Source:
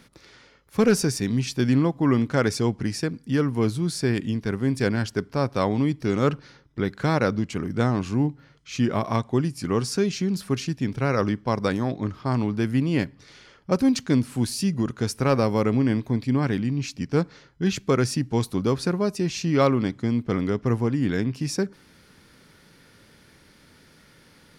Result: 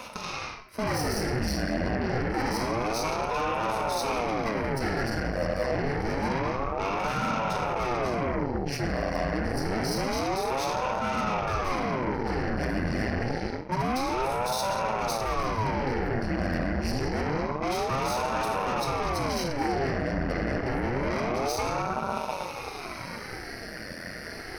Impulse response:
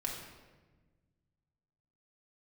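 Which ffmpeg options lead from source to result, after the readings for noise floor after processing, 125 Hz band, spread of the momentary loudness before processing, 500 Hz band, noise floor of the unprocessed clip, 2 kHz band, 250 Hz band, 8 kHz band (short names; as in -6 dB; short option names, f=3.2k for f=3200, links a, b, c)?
-39 dBFS, -8.0 dB, 6 LU, -3.0 dB, -55 dBFS, +1.5 dB, -8.5 dB, -3.5 dB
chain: -filter_complex "[0:a]highpass=f=74:w=0.5412,highpass=f=74:w=1.3066[a];[1:a]atrim=start_sample=2205[b];[a][b]afir=irnorm=-1:irlink=0,asplit=2[c][d];[d]aeval=exprs='0.631*sin(PI/2*3.55*val(0)/0.631)':c=same,volume=-8.5dB[e];[c][e]amix=inputs=2:normalize=0,alimiter=limit=-10.5dB:level=0:latency=1:release=14,aeval=exprs='0.299*(cos(1*acos(clip(val(0)/0.299,-1,1)))-cos(1*PI/2))+0.00422*(cos(2*acos(clip(val(0)/0.299,-1,1)))-cos(2*PI/2))+0.075*(cos(6*acos(clip(val(0)/0.299,-1,1)))-cos(6*PI/2))':c=same,superequalizer=8b=3.16:11b=2.51:13b=0.316:14b=1.78:15b=0.316,areverse,acompressor=threshold=-27dB:ratio=8,areverse,aeval=exprs='val(0)*sin(2*PI*410*n/s+410*0.9/0.27*sin(2*PI*0.27*n/s))':c=same,volume=3.5dB"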